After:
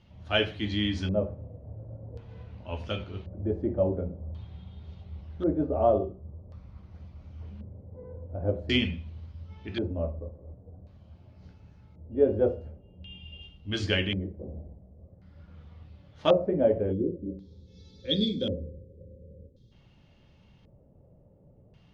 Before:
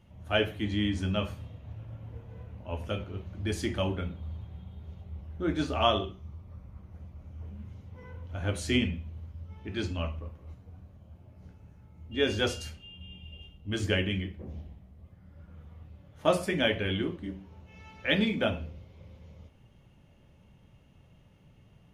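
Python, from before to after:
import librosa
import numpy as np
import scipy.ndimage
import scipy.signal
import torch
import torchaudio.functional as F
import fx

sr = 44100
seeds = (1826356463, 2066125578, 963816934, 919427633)

y = fx.spec_box(x, sr, start_s=16.93, length_s=2.79, low_hz=560.0, high_hz=3200.0, gain_db=-22)
y = fx.filter_lfo_lowpass(y, sr, shape='square', hz=0.46, low_hz=550.0, high_hz=4600.0, q=2.6)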